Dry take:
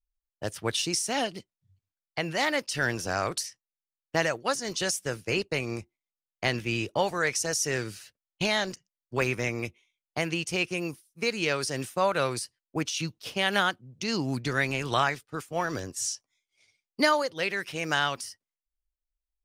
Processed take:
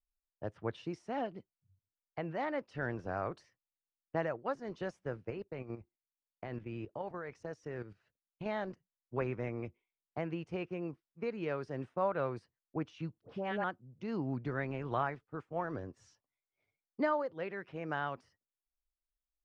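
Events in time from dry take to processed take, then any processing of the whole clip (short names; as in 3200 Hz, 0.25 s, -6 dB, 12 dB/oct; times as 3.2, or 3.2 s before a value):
5.3–8.46 level quantiser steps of 11 dB
13.21–13.64 dispersion highs, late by 86 ms, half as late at 1100 Hz
whole clip: LPF 1200 Hz 12 dB/oct; gain -6.5 dB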